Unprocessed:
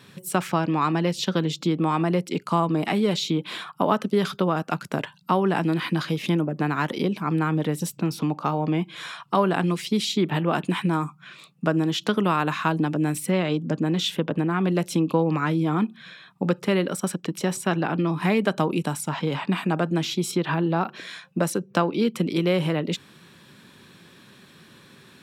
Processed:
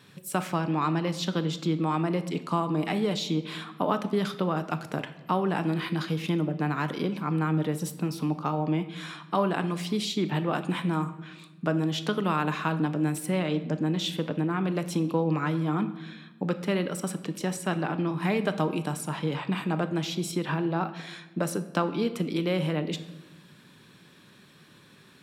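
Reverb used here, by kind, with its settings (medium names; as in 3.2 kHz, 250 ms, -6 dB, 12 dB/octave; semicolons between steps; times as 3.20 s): simulated room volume 550 m³, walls mixed, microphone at 0.44 m; trim -5 dB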